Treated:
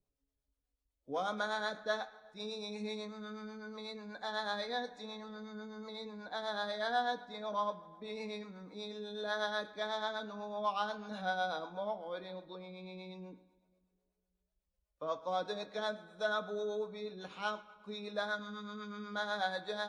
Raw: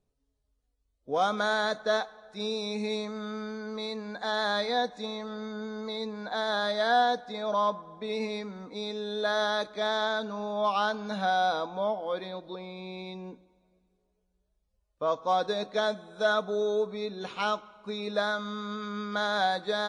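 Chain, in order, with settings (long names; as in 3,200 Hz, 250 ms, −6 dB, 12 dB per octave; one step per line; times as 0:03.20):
two-band tremolo in antiphase 8.1 Hz, depth 70%, crossover 430 Hz
on a send: convolution reverb RT60 1.2 s, pre-delay 3 ms, DRR 8 dB
on the sum: level −6 dB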